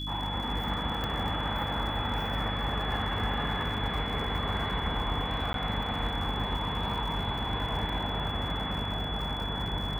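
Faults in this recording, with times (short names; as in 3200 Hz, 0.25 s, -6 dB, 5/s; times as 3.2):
crackle 120/s -38 dBFS
hum 50 Hz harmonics 6 -37 dBFS
tone 3400 Hz -36 dBFS
1.04 pop -20 dBFS
5.53–5.54 gap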